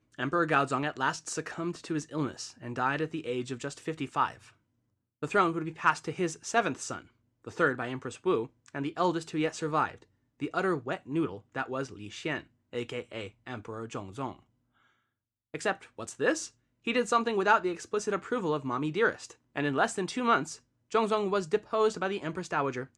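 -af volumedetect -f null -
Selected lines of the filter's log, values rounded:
mean_volume: -31.8 dB
max_volume: -9.6 dB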